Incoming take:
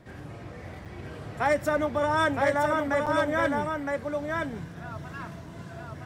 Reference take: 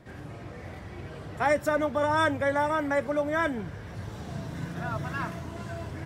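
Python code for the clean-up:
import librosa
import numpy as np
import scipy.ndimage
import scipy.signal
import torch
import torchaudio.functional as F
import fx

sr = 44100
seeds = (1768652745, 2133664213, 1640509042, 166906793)

y = fx.fix_declip(x, sr, threshold_db=-16.5)
y = fx.fix_interpolate(y, sr, at_s=(0.85, 3.06), length_ms=6.8)
y = fx.fix_echo_inverse(y, sr, delay_ms=964, level_db=-3.5)
y = fx.gain(y, sr, db=fx.steps((0.0, 0.0), (3.66, 6.5)))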